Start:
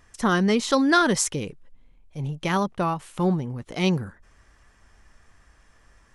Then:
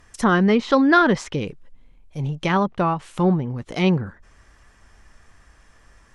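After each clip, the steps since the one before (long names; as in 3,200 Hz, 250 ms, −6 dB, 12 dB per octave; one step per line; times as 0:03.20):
treble cut that deepens with the level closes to 2,700 Hz, closed at −20.5 dBFS
level +4 dB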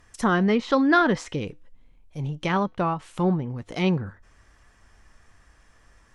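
tuned comb filter 100 Hz, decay 0.28 s, harmonics odd, mix 40%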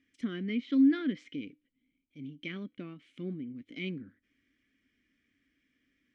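formant filter i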